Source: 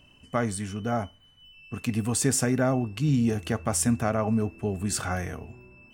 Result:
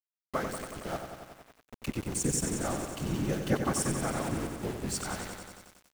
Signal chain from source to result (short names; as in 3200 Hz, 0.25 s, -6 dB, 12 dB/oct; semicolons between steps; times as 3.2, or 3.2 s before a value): 2.02–2.64 spectral gain 430–5400 Hz -9 dB; LPF 9900 Hz; harmonic-percussive split harmonic -7 dB; 0.96–1.83 compressor 2:1, threshold -44 dBFS, peak gain reduction 9 dB; 3.28–3.7 comb 4.4 ms, depth 97%; outdoor echo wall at 78 m, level -18 dB; whisperiser; sample gate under -34 dBFS; lo-fi delay 92 ms, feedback 80%, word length 8-bit, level -7 dB; gain -4 dB